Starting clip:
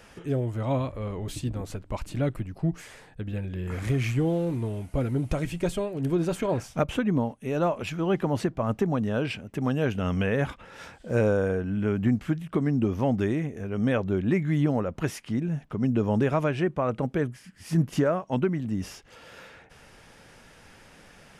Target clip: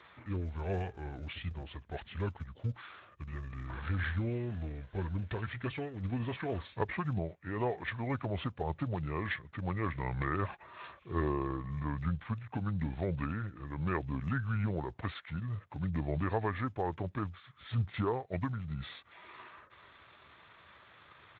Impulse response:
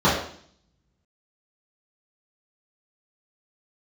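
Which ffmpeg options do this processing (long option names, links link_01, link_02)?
-af "equalizer=frequency=320:width=0.42:gain=-14,asetrate=31183,aresample=44100,atempo=1.41421,aresample=8000,aresample=44100,volume=1dB" -ar 16000 -c:a libspeex -b:a 17k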